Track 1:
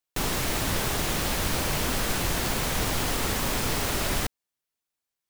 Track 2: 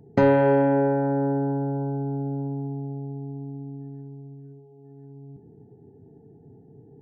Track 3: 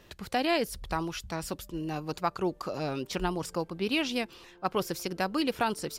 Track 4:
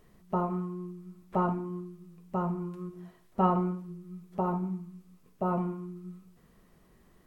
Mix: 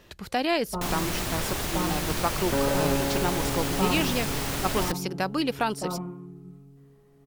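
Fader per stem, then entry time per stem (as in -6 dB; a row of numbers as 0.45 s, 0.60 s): -3.0 dB, -9.0 dB, +2.0 dB, -3.5 dB; 0.65 s, 2.35 s, 0.00 s, 0.40 s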